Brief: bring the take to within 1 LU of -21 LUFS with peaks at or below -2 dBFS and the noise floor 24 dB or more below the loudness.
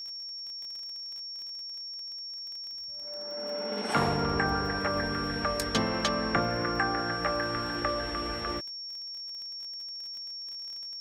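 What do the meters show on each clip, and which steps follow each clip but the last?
tick rate 32 per s; steady tone 5.5 kHz; tone level -37 dBFS; loudness -31.5 LUFS; peak level -13.5 dBFS; loudness target -21.0 LUFS
-> de-click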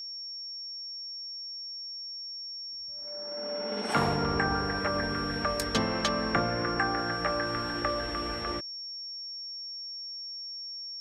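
tick rate 0 per s; steady tone 5.5 kHz; tone level -37 dBFS
-> band-stop 5.5 kHz, Q 30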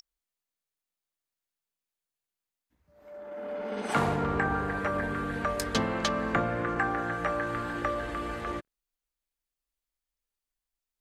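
steady tone not found; loudness -30.5 LUFS; peak level -14.0 dBFS; loudness target -21.0 LUFS
-> trim +9.5 dB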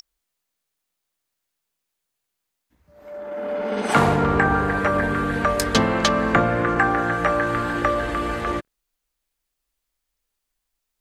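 loudness -21.0 LUFS; peak level -4.5 dBFS; noise floor -81 dBFS

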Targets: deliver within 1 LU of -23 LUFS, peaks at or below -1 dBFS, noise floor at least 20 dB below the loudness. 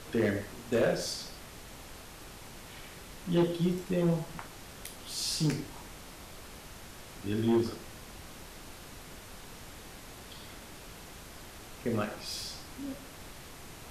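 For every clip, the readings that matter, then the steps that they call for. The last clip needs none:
clipped samples 0.4%; clipping level -21.0 dBFS; noise floor -49 dBFS; noise floor target -53 dBFS; loudness -33.0 LUFS; peak level -21.0 dBFS; loudness target -23.0 LUFS
-> clip repair -21 dBFS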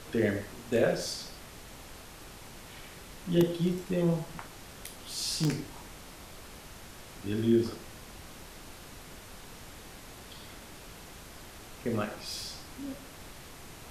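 clipped samples 0.0%; noise floor -49 dBFS; noise floor target -52 dBFS
-> noise print and reduce 6 dB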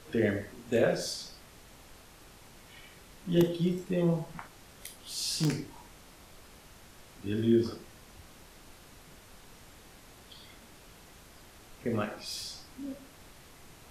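noise floor -55 dBFS; loudness -31.5 LUFS; peak level -12.0 dBFS; loudness target -23.0 LUFS
-> trim +8.5 dB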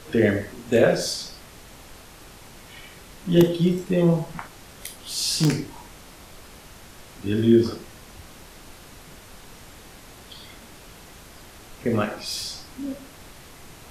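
loudness -23.0 LUFS; peak level -3.5 dBFS; noise floor -46 dBFS

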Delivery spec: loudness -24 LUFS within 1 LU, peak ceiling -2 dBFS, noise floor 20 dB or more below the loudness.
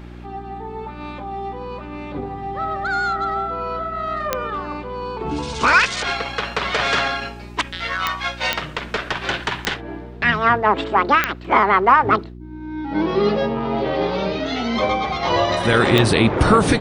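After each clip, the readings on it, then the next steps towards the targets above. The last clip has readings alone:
clicks found 6; hum 60 Hz; highest harmonic 360 Hz; hum level -34 dBFS; loudness -20.0 LUFS; peak level -1.5 dBFS; loudness target -24.0 LUFS
-> de-click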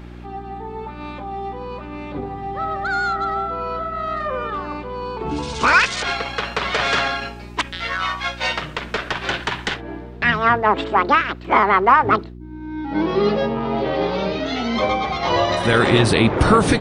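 clicks found 0; hum 60 Hz; highest harmonic 360 Hz; hum level -34 dBFS
-> de-hum 60 Hz, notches 6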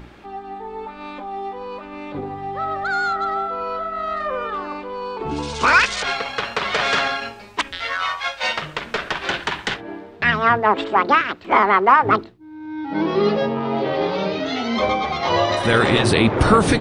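hum not found; loudness -20.0 LUFS; peak level -1.5 dBFS; loudness target -24.0 LUFS
-> trim -4 dB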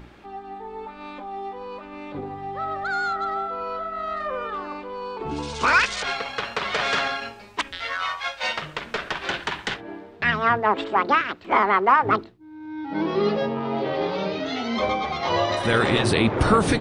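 loudness -24.0 LUFS; peak level -5.5 dBFS; noise floor -44 dBFS

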